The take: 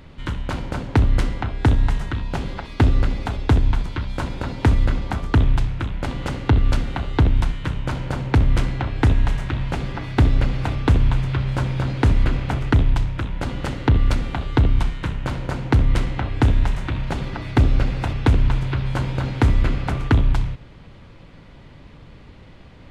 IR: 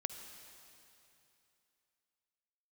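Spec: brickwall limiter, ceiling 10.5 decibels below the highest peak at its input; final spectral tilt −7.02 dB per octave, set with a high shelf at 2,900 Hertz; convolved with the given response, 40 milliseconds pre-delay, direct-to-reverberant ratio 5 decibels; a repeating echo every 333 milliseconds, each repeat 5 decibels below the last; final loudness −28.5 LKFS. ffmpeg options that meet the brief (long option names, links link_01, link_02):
-filter_complex "[0:a]highshelf=frequency=2900:gain=-8.5,alimiter=limit=-16dB:level=0:latency=1,aecho=1:1:333|666|999|1332|1665|1998|2331:0.562|0.315|0.176|0.0988|0.0553|0.031|0.0173,asplit=2[link_01][link_02];[1:a]atrim=start_sample=2205,adelay=40[link_03];[link_02][link_03]afir=irnorm=-1:irlink=0,volume=-4.5dB[link_04];[link_01][link_04]amix=inputs=2:normalize=0,volume=-3.5dB"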